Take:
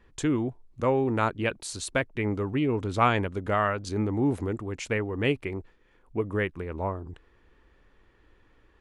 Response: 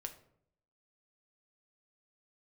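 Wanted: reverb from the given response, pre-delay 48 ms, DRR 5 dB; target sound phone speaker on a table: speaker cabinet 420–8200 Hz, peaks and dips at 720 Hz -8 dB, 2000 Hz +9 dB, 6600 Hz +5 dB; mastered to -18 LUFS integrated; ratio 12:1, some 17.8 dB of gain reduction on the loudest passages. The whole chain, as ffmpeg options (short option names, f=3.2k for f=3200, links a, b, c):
-filter_complex "[0:a]acompressor=threshold=-34dB:ratio=12,asplit=2[a][b];[1:a]atrim=start_sample=2205,adelay=48[c];[b][c]afir=irnorm=-1:irlink=0,volume=-2dB[d];[a][d]amix=inputs=2:normalize=0,highpass=f=420:w=0.5412,highpass=f=420:w=1.3066,equalizer=f=720:t=q:w=4:g=-8,equalizer=f=2k:t=q:w=4:g=9,equalizer=f=6.6k:t=q:w=4:g=5,lowpass=f=8.2k:w=0.5412,lowpass=f=8.2k:w=1.3066,volume=22dB"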